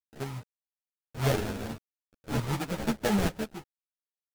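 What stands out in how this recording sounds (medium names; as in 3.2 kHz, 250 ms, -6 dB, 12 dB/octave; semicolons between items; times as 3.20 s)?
a quantiser's noise floor 8-bit, dither none; random-step tremolo; aliases and images of a low sample rate 1.1 kHz, jitter 20%; a shimmering, thickened sound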